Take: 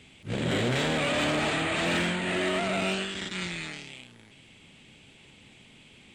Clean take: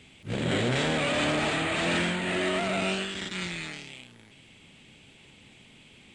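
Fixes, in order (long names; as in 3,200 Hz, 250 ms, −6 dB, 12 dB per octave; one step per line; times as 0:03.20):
clipped peaks rebuilt −20 dBFS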